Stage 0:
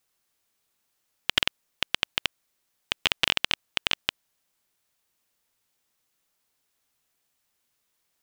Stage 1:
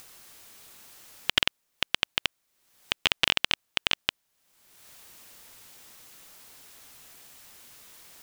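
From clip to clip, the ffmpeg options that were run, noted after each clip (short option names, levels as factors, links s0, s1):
-af "acompressor=mode=upward:threshold=0.0282:ratio=2.5"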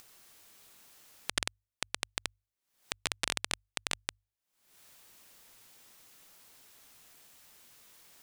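-af "aeval=exprs='0.841*(cos(1*acos(clip(val(0)/0.841,-1,1)))-cos(1*PI/2))+0.335*(cos(3*acos(clip(val(0)/0.841,-1,1)))-cos(3*PI/2))':c=same,acompressor=mode=upward:threshold=0.01:ratio=2.5,bandreject=f=50:t=h:w=6,bandreject=f=100:t=h:w=6,volume=0.501"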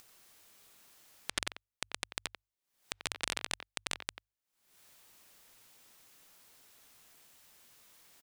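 -filter_complex "[0:a]asplit=2[s0][s1];[s1]adelay=90,highpass=300,lowpass=3400,asoftclip=type=hard:threshold=0.168,volume=0.398[s2];[s0][s2]amix=inputs=2:normalize=0,volume=0.708"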